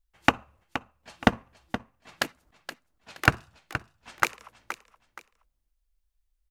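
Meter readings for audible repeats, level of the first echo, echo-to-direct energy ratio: 2, -11.5 dB, -11.0 dB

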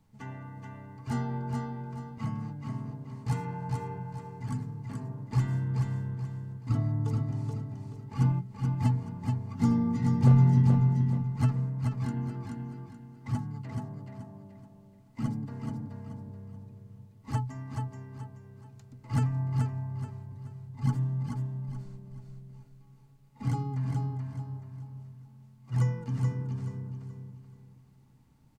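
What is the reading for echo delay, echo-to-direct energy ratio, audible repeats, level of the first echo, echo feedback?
429 ms, -4.0 dB, 4, -4.5 dB, 33%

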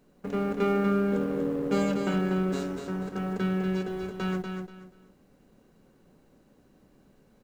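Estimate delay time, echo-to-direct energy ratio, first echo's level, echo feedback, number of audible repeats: 241 ms, -5.5 dB, -6.0 dB, 25%, 3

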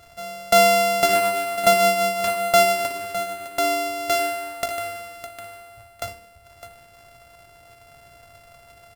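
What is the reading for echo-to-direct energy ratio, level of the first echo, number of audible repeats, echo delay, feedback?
-8.0 dB, -10.0 dB, 2, 57 ms, no regular repeats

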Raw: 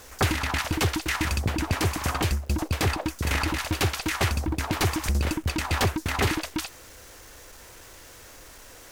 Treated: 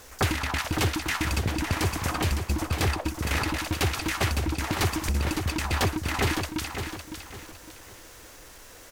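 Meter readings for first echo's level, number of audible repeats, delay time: -8.0 dB, 3, 558 ms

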